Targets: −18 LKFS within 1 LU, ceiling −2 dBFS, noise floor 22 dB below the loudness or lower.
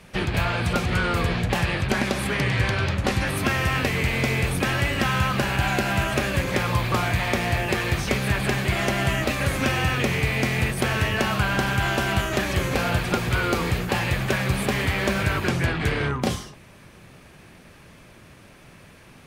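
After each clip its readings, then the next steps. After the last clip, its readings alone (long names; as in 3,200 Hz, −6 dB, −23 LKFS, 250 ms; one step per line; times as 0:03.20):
integrated loudness −23.5 LKFS; sample peak −10.5 dBFS; target loudness −18.0 LKFS
→ level +5.5 dB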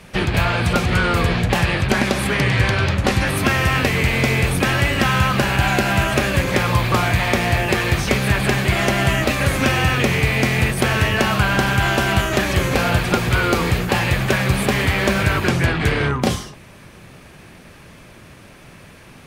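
integrated loudness −18.0 LKFS; sample peak −5.0 dBFS; background noise floor −43 dBFS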